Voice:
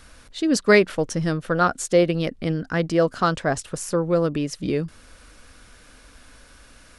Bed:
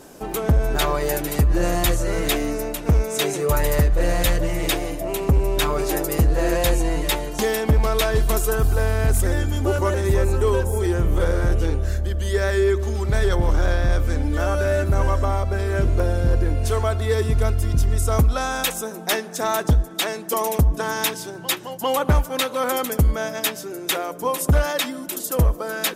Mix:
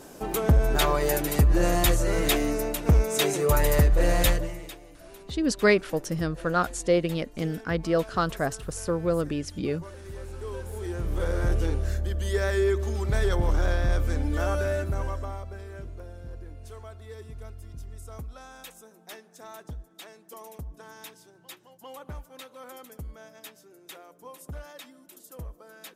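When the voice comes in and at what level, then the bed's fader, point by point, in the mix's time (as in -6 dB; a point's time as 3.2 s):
4.95 s, -5.0 dB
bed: 4.29 s -2 dB
4.76 s -22.5 dB
10.04 s -22.5 dB
11.47 s -5 dB
14.53 s -5 dB
16 s -22 dB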